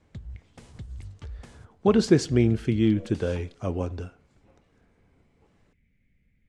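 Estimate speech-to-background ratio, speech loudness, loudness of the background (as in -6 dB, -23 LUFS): 19.5 dB, -24.5 LUFS, -44.0 LUFS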